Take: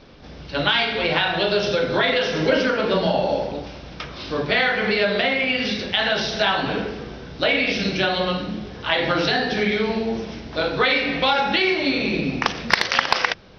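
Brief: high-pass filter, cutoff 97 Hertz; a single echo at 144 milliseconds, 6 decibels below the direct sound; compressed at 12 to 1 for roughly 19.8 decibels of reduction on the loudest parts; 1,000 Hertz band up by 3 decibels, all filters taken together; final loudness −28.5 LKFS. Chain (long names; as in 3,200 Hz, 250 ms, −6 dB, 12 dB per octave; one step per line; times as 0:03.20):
high-pass filter 97 Hz
parametric band 1,000 Hz +4 dB
downward compressor 12 to 1, threshold −30 dBFS
single-tap delay 144 ms −6 dB
level +4 dB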